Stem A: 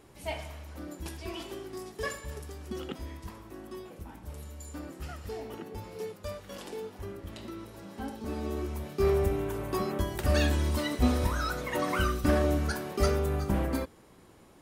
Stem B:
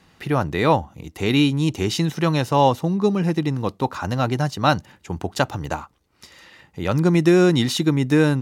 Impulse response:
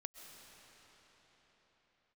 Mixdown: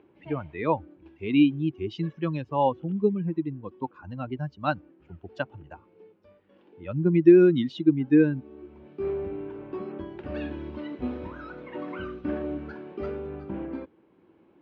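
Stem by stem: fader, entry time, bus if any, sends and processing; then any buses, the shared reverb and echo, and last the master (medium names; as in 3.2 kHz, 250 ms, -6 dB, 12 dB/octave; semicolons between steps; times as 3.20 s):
-5.5 dB, 0.00 s, no send, upward compressor, threshold -50 dBFS; auto duck -10 dB, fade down 1.30 s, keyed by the second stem
-2.5 dB, 0.00 s, no send, expander on every frequency bin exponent 2; treble shelf 4.5 kHz +8 dB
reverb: none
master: cabinet simulation 120–2600 Hz, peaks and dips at 120 Hz -5 dB, 330 Hz +8 dB, 690 Hz -5 dB, 1.2 kHz -6 dB, 1.9 kHz -7 dB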